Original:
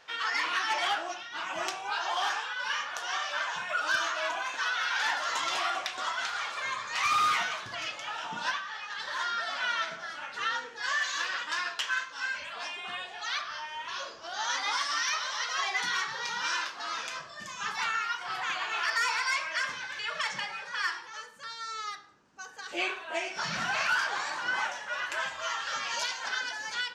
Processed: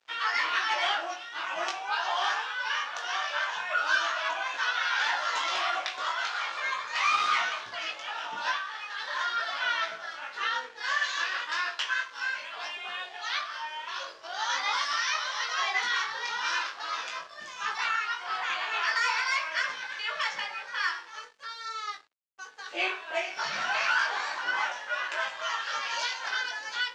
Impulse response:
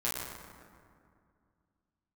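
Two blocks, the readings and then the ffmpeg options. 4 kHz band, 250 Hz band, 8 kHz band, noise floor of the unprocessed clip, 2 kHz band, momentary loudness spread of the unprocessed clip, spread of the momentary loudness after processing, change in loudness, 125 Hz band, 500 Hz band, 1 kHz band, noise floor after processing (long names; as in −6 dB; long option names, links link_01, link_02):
+1.0 dB, can't be measured, −3.0 dB, −45 dBFS, +2.0 dB, 9 LU, 10 LU, +1.5 dB, below −10 dB, +1.0 dB, +1.5 dB, −46 dBFS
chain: -filter_complex "[0:a]flanger=delay=18:depth=2.8:speed=0.4,aeval=exprs='sgn(val(0))*max(abs(val(0))-0.00158,0)':channel_layout=same,acrossover=split=330 6500:gain=0.2 1 0.0794[link_01][link_02][link_03];[link_01][link_02][link_03]amix=inputs=3:normalize=0,volume=5.5dB"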